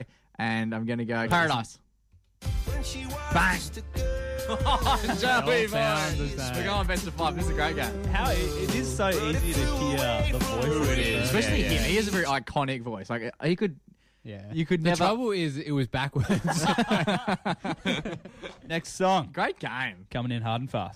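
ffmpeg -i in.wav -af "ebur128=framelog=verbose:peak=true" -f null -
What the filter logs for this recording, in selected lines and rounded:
Integrated loudness:
  I:         -27.2 LUFS
  Threshold: -37.6 LUFS
Loudness range:
  LRA:         3.7 LU
  Threshold: -47.4 LUFS
  LRA low:   -29.5 LUFS
  LRA high:  -25.8 LUFS
True peak:
  Peak:      -13.2 dBFS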